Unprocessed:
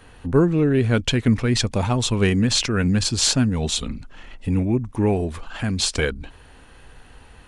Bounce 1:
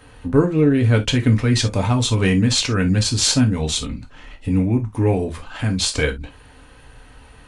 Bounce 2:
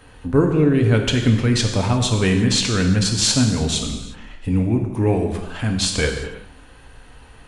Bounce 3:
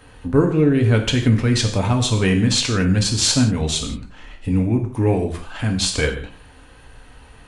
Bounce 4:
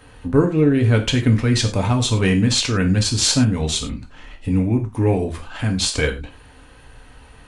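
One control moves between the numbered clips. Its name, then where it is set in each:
non-linear reverb, gate: 90, 390, 200, 130 ms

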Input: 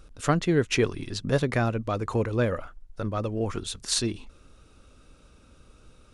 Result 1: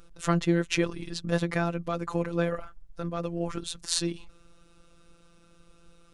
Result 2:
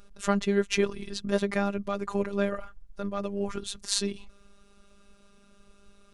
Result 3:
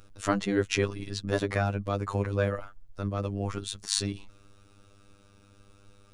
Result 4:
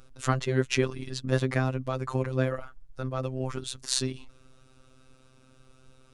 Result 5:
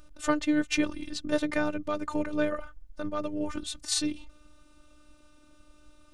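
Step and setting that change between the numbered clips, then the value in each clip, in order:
robotiser, frequency: 170, 200, 100, 130, 300 Hz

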